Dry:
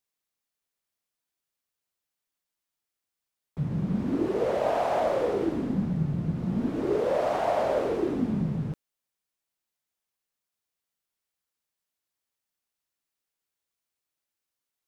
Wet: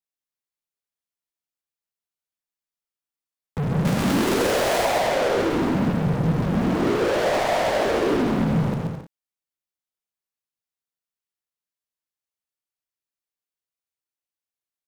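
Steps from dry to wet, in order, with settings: 3.85–4.85 delta modulation 64 kbps, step -24 dBFS; limiter -21.5 dBFS, peak gain reduction 8 dB; sample leveller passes 5; on a send: bouncing-ball echo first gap 0.13 s, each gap 0.65×, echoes 5

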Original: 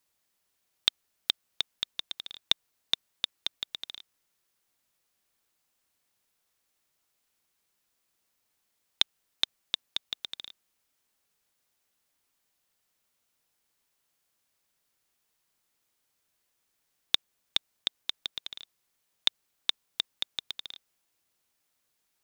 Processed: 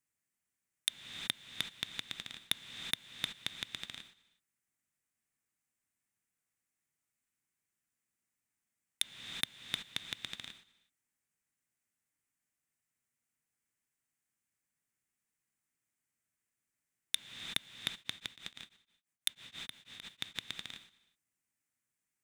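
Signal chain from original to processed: high shelf 7100 Hz -3.5 dB; non-linear reverb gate 0.4 s rising, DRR 10.5 dB; soft clip -12.5 dBFS, distortion -12 dB; gate -50 dBFS, range -13 dB; graphic EQ 125/250/500/1000/2000/4000/8000 Hz +8/+6/-4/-3/+8/-11/+9 dB; 17.96–20.36 beating tremolo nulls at 6.1 Hz; gain +1 dB

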